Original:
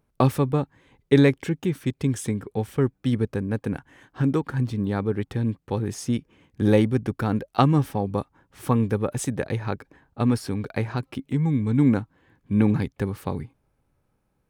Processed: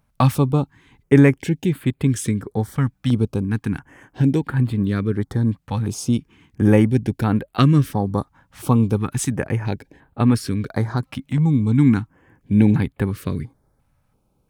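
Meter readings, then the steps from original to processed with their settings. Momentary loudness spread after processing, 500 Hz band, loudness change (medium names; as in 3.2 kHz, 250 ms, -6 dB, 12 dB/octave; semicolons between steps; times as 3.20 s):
11 LU, +1.0 dB, +4.5 dB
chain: dynamic bell 510 Hz, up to -5 dB, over -37 dBFS, Q 1.4; step-sequenced notch 2.9 Hz 380–5800 Hz; trim +6 dB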